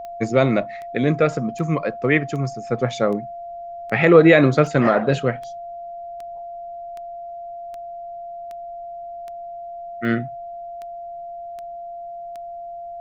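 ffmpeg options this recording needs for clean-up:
-af "adeclick=t=4,bandreject=f=690:w=30,agate=range=0.0891:threshold=0.0501"

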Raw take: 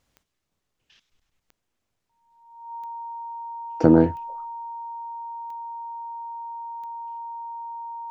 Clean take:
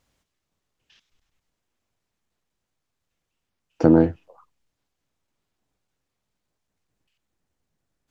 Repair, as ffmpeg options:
-af "adeclick=t=4,bandreject=f=930:w=30"

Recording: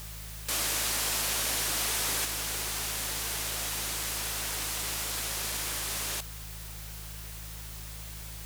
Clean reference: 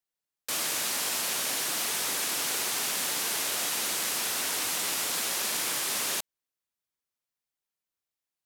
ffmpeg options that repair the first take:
-af "bandreject=f=53.6:t=h:w=4,bandreject=f=107.2:t=h:w=4,bandreject=f=160.8:t=h:w=4,afwtdn=0.0056,asetnsamples=n=441:p=0,asendcmd='2.25 volume volume 4dB',volume=1"

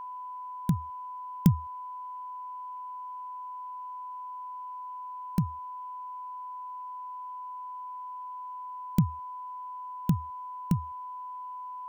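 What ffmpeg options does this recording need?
-af "bandreject=f=1000:w=30,agate=range=0.0891:threshold=0.0251"

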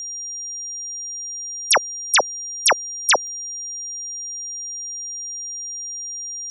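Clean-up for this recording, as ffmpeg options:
-af "adeclick=t=4,bandreject=f=5700:w=30,agate=range=0.0891:threshold=0.0708"

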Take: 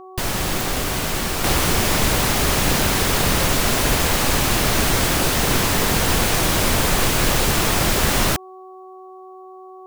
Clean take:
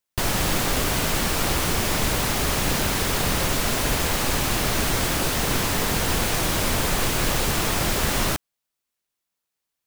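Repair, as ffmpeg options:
-af "adeclick=t=4,bandreject=f=374.3:t=h:w=4,bandreject=f=748.6:t=h:w=4,bandreject=f=1122.9:t=h:w=4,asetnsamples=n=441:p=0,asendcmd='1.44 volume volume -4.5dB',volume=1"

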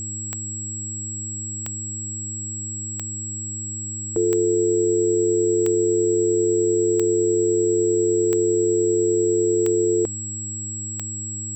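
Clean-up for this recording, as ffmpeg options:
-af "adeclick=t=4,bandreject=f=105.6:t=h:w=4,bandreject=f=211.2:t=h:w=4,bandreject=f=316.8:t=h:w=4,bandreject=f=7700:w=30,agate=range=0.0891:threshold=0.0794"

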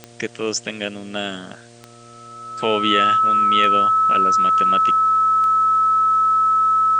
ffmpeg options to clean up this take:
-af "adeclick=t=4,bandreject=f=118:t=h:w=4,bandreject=f=236:t=h:w=4,bandreject=f=354:t=h:w=4,bandreject=f=472:t=h:w=4,bandreject=f=590:t=h:w=4,bandreject=f=708:t=h:w=4,bandreject=f=1300:w=30,agate=range=0.0891:threshold=0.0178"

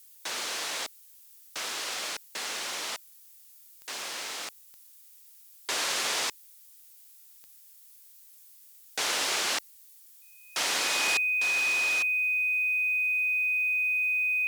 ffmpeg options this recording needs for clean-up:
-af "adeclick=t=4,bandreject=f=2500:w=30,afftdn=nr=22:nf=-54"

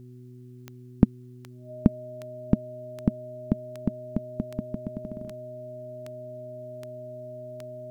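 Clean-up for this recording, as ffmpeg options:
-af "adeclick=t=4,bandreject=f=124.1:t=h:w=4,bandreject=f=248.2:t=h:w=4,bandreject=f=372.3:t=h:w=4,bandreject=f=620:w=30"

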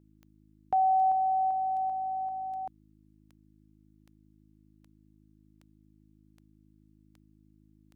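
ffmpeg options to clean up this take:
-af "adeclick=t=4,bandreject=f=52.5:t=h:w=4,bandreject=f=105:t=h:w=4,bandreject=f=157.5:t=h:w=4,bandreject=f=210:t=h:w=4,bandreject=f=262.5:t=h:w=4,bandreject=f=315:t=h:w=4"

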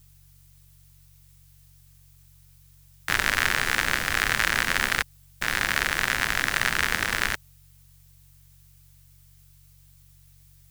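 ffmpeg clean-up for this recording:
-af "bandreject=f=46.6:t=h:w=4,bandreject=f=93.2:t=h:w=4,bandreject=f=139.8:t=h:w=4,agate=range=0.0891:threshold=0.00447"

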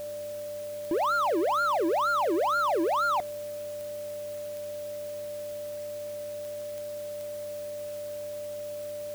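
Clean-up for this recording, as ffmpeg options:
-af "adeclick=t=4,bandreject=f=99.7:t=h:w=4,bandreject=f=199.4:t=h:w=4,bandreject=f=299.1:t=h:w=4,bandreject=f=398.8:t=h:w=4,bandreject=f=590:w=30,afwtdn=0.0032"

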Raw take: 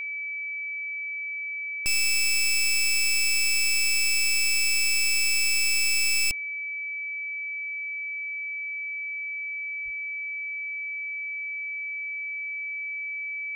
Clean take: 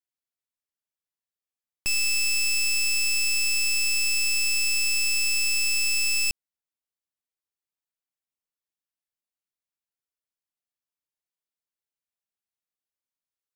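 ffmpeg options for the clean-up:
-filter_complex "[0:a]bandreject=f=2300:w=30,asplit=3[s0][s1][s2];[s0]afade=t=out:st=9.84:d=0.02[s3];[s1]highpass=f=140:w=0.5412,highpass=f=140:w=1.3066,afade=t=in:st=9.84:d=0.02,afade=t=out:st=9.96:d=0.02[s4];[s2]afade=t=in:st=9.96:d=0.02[s5];[s3][s4][s5]amix=inputs=3:normalize=0,asetnsamples=n=441:p=0,asendcmd='7.64 volume volume -10.5dB',volume=1"

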